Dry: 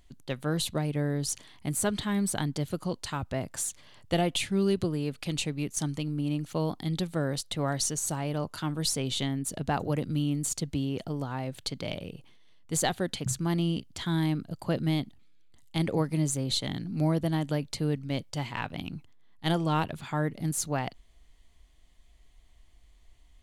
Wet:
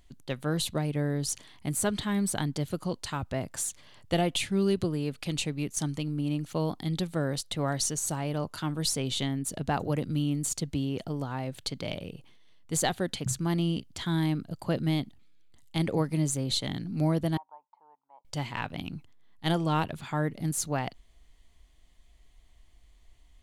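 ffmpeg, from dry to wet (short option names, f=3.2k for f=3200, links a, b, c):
-filter_complex "[0:a]asettb=1/sr,asplit=3[a][b][c];[a]atrim=end=17.374[d];[b]atrim=start=17.37:end=18.25,asetpts=PTS-STARTPTS,afade=t=in:d=0.004:c=qsin,afade=t=out:st=0.876:d=0.004:c=qsin,asuperpass=centerf=910:order=4:qfactor=4.8[e];[c]atrim=start=18.246[f];[d][e]acrossfade=d=0.004:c1=hsin:c2=qsin[g];[g][f]acrossfade=d=0.004:c1=qsin:c2=hsin"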